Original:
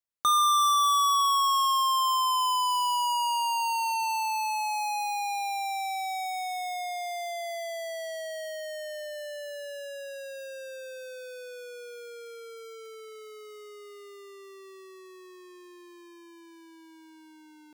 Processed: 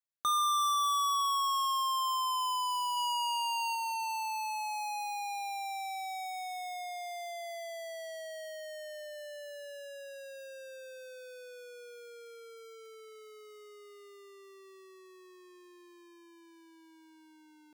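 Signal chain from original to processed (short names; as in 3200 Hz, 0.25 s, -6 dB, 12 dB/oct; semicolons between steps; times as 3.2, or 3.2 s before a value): 2.96–3.75 dynamic EQ 3300 Hz, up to +5 dB, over -43 dBFS, Q 0.88; gain -6.5 dB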